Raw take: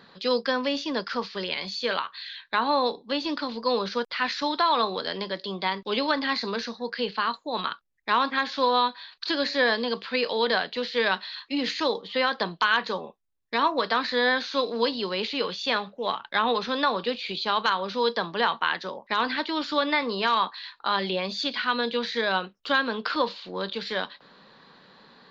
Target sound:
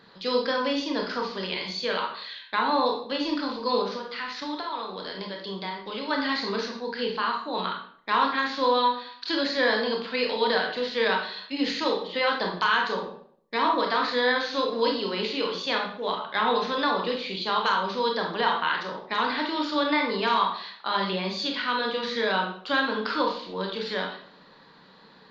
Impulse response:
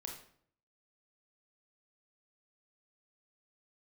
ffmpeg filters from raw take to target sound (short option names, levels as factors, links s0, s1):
-filter_complex "[0:a]asplit=3[s0][s1][s2];[s0]afade=t=out:st=3.82:d=0.02[s3];[s1]acompressor=threshold=0.0316:ratio=6,afade=t=in:st=3.82:d=0.02,afade=t=out:st=6.1:d=0.02[s4];[s2]afade=t=in:st=6.1:d=0.02[s5];[s3][s4][s5]amix=inputs=3:normalize=0[s6];[1:a]atrim=start_sample=2205[s7];[s6][s7]afir=irnorm=-1:irlink=0,volume=1.33"